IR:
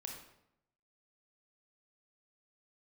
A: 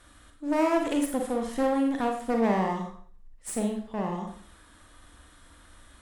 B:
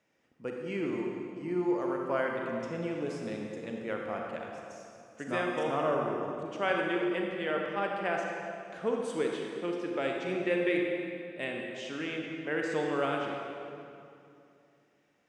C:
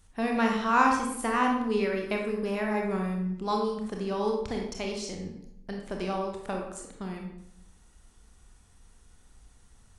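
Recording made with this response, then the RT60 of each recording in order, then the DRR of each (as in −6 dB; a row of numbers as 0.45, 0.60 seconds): C; 0.50, 2.6, 0.80 seconds; 2.5, 0.0, 0.5 decibels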